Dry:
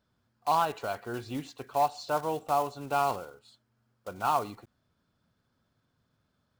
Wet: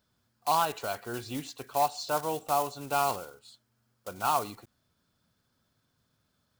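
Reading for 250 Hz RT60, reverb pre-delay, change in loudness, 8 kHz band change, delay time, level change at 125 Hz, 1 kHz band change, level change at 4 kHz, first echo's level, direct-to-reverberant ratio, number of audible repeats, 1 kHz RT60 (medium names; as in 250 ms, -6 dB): no reverb, no reverb, 0.0 dB, +7.5 dB, no echo, -1.0 dB, -0.5 dB, +4.5 dB, no echo, no reverb, no echo, no reverb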